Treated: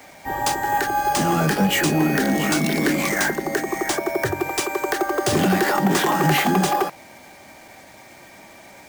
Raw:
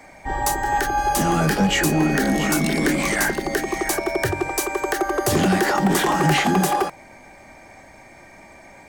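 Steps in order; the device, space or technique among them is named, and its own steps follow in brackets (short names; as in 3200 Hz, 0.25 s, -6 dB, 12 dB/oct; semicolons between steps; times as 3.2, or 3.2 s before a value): HPF 100 Hz 12 dB/oct; 3.09–4.4 band shelf 3600 Hz -8.5 dB 1.2 oct; early 8-bit sampler (sample-rate reducer 15000 Hz, jitter 0%; bit-crush 8-bit)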